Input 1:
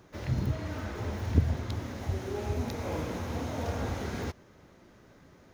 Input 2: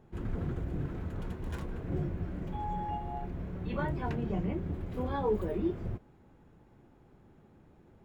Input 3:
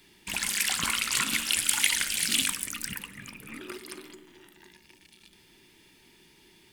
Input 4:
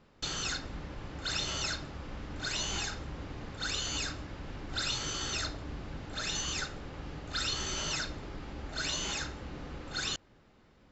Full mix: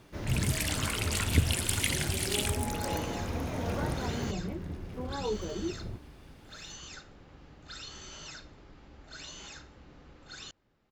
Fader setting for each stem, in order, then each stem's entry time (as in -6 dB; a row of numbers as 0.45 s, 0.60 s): -1.0 dB, -3.5 dB, -6.5 dB, -11.0 dB; 0.00 s, 0.00 s, 0.00 s, 0.35 s